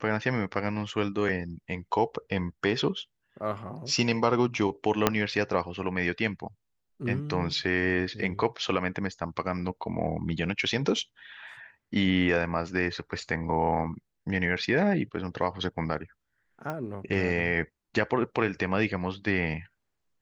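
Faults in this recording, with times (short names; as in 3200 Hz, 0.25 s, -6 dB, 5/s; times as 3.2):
5.07 pop -5 dBFS
16.7 pop -21 dBFS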